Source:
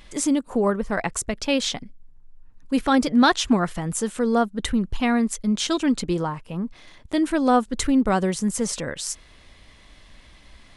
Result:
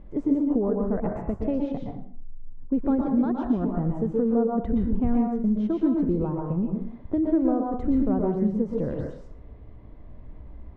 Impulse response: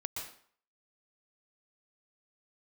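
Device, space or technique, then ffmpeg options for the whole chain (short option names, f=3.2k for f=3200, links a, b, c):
television next door: -filter_complex "[0:a]acompressor=threshold=-26dB:ratio=4,lowpass=500[a];[1:a]atrim=start_sample=2205[b];[a][b]afir=irnorm=-1:irlink=0,volume=7dB"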